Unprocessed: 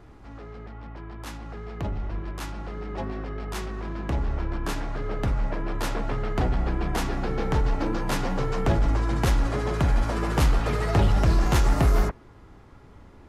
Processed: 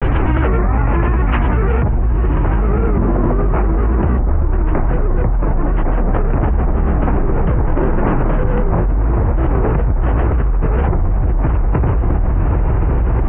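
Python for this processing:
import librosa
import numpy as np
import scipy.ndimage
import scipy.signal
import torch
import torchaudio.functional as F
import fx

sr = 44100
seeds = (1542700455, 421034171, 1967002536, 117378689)

p1 = fx.self_delay(x, sr, depth_ms=0.71)
p2 = scipy.signal.sosfilt(scipy.signal.ellip(4, 1.0, 40, 2600.0, 'lowpass', fs=sr, output='sos'), p1)
p3 = fx.low_shelf(p2, sr, hz=100.0, db=5.5)
p4 = fx.env_lowpass_down(p3, sr, base_hz=1200.0, full_db=-27.5)
p5 = fx.granulator(p4, sr, seeds[0], grain_ms=100.0, per_s=20.0, spray_ms=100.0, spread_st=3)
p6 = p5 + fx.echo_diffused(p5, sr, ms=1033, feedback_pct=46, wet_db=-8.0, dry=0)
y = fx.env_flatten(p6, sr, amount_pct=100)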